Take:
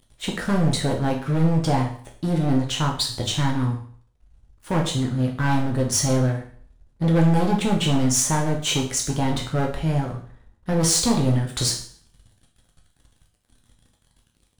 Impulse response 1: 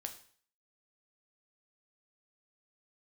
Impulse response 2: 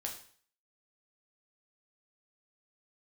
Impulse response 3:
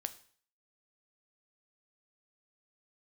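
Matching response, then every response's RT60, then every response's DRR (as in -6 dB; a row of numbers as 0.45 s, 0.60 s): 2; 0.50 s, 0.50 s, 0.50 s; 5.0 dB, 0.0 dB, 10.0 dB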